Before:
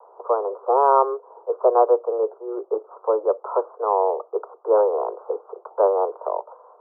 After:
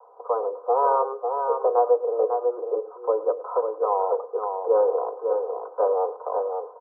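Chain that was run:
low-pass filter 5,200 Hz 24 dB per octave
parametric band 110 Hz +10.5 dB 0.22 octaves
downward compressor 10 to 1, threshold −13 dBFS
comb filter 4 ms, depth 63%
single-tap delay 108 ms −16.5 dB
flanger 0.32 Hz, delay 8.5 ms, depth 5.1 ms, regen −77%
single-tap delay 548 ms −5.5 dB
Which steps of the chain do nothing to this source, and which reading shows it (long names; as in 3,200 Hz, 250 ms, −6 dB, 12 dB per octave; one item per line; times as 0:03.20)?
low-pass filter 5,200 Hz: nothing at its input above 1,400 Hz
parametric band 110 Hz: nothing at its input below 300 Hz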